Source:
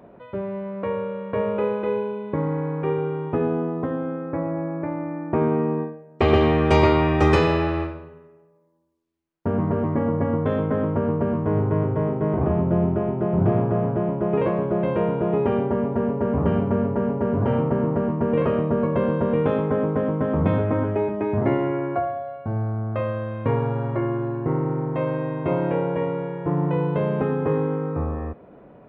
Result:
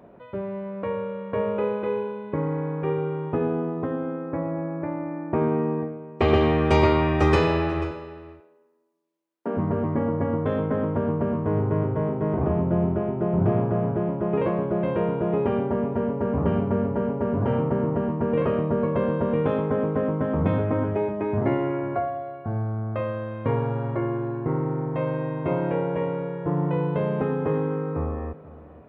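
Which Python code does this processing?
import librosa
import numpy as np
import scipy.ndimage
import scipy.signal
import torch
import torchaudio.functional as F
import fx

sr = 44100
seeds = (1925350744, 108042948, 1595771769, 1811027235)

y = fx.highpass(x, sr, hz=230.0, slope=24, at=(7.91, 9.57))
y = y + 10.0 ** (-18.0 / 20.0) * np.pad(y, (int(489 * sr / 1000.0), 0))[:len(y)]
y = y * 10.0 ** (-2.0 / 20.0)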